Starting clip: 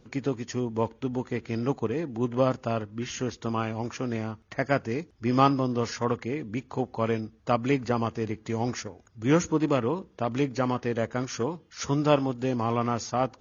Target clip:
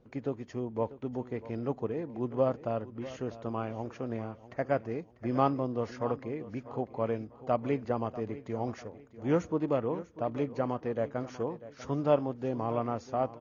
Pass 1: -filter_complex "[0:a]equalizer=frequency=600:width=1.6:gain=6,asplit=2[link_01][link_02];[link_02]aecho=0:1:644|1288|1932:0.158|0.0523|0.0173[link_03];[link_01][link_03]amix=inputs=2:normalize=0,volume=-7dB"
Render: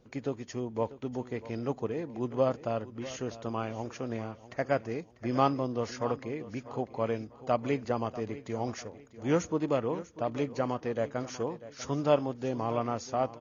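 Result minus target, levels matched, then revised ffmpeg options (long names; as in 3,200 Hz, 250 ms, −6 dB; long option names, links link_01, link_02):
2,000 Hz band +3.0 dB
-filter_complex "[0:a]lowpass=frequency=1600:poles=1,equalizer=frequency=600:width=1.6:gain=6,asplit=2[link_01][link_02];[link_02]aecho=0:1:644|1288|1932:0.158|0.0523|0.0173[link_03];[link_01][link_03]amix=inputs=2:normalize=0,volume=-7dB"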